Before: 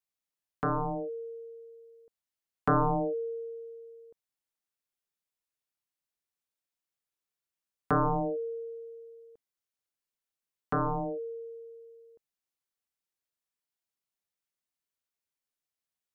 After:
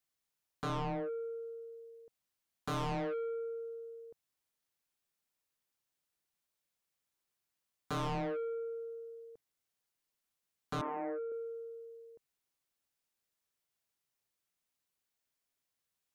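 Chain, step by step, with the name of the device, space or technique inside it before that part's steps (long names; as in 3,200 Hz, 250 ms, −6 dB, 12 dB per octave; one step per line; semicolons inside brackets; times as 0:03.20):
open-reel tape (soft clipping −36.5 dBFS, distortion −5 dB; parametric band 130 Hz +3.5 dB; white noise bed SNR 48 dB)
0:10.81–0:11.32: elliptic band-pass filter 260–2,000 Hz, stop band 40 dB
level +1.5 dB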